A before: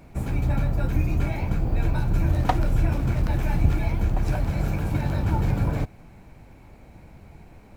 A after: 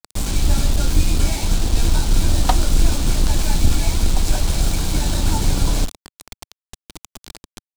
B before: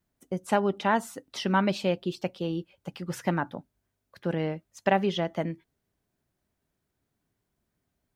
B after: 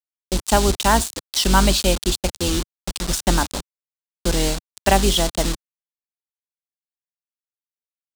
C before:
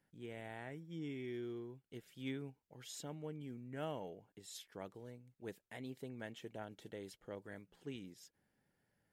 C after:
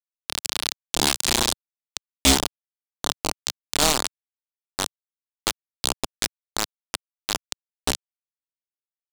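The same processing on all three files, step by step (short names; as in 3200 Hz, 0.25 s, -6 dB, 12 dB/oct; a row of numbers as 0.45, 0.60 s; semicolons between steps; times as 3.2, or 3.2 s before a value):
octaver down 2 oct, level +2 dB; bit-crush 6-bit; graphic EQ 125/500/2000/4000/8000 Hz -10/-4/-5/+7/+9 dB; normalise peaks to -1.5 dBFS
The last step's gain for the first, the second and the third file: +5.0, +9.0, +20.5 dB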